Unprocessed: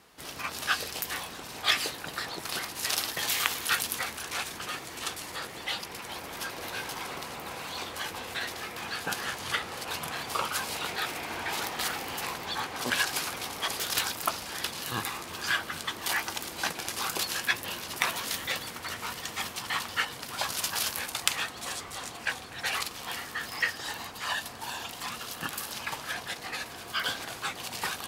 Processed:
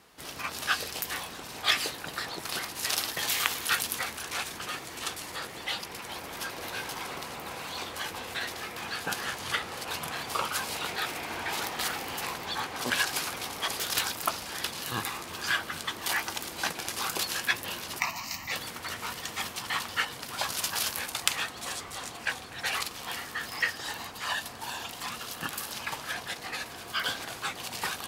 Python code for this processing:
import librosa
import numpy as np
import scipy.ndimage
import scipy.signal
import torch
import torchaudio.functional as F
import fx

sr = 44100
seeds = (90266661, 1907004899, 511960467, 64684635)

y = fx.fixed_phaser(x, sr, hz=2300.0, stages=8, at=(17.99, 18.51), fade=0.02)